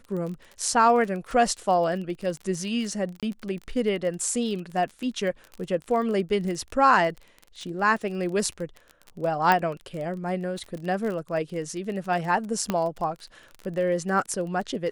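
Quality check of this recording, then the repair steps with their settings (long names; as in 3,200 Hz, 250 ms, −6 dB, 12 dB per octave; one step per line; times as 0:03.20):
surface crackle 27 per second −32 dBFS
0:03.20–0:03.23: drop-out 27 ms
0:09.52: click −9 dBFS
0:12.70: click −12 dBFS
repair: click removal
repair the gap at 0:03.20, 27 ms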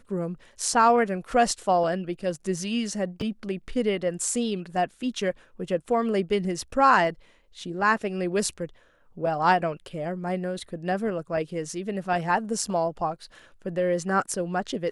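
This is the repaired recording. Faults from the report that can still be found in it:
none of them is left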